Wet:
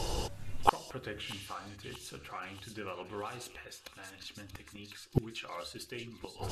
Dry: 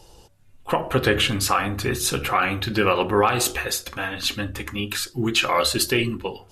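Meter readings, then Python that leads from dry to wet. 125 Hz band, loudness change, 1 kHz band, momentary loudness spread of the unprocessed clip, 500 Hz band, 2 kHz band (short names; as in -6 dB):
-13.5 dB, -17.5 dB, -12.5 dB, 8 LU, -18.0 dB, -20.5 dB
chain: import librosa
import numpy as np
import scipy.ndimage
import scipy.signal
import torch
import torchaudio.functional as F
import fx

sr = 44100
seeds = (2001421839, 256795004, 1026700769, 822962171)

y = fx.spec_repair(x, sr, seeds[0], start_s=1.3, length_s=0.43, low_hz=1700.0, high_hz=9100.0, source='both')
y = fx.high_shelf(y, sr, hz=11000.0, db=-11.0)
y = fx.gate_flip(y, sr, shuts_db=-22.0, range_db=-37)
y = fx.echo_wet_highpass(y, sr, ms=632, feedback_pct=57, hz=3300.0, wet_db=-6.0)
y = y * librosa.db_to_amplitude(15.0)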